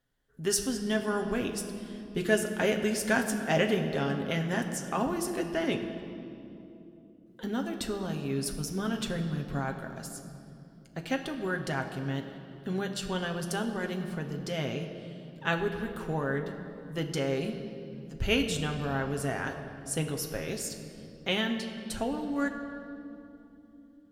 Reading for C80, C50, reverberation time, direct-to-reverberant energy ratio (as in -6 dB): 8.5 dB, 8.0 dB, 3.0 s, 3.0 dB